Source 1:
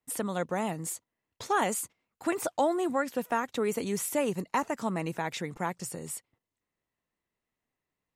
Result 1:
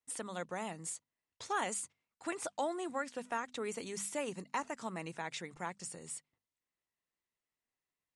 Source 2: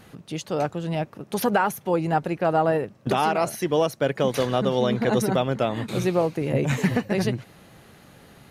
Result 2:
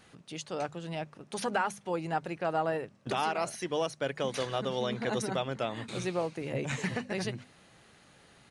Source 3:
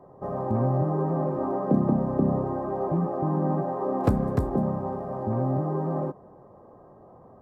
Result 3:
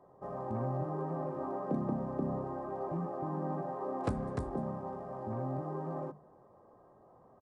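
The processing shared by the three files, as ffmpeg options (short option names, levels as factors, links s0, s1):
-af "tiltshelf=f=970:g=-3.5,bandreject=f=50:t=h:w=6,bandreject=f=100:t=h:w=6,bandreject=f=150:t=h:w=6,bandreject=f=200:t=h:w=6,bandreject=f=250:t=h:w=6,aresample=22050,aresample=44100,volume=0.398"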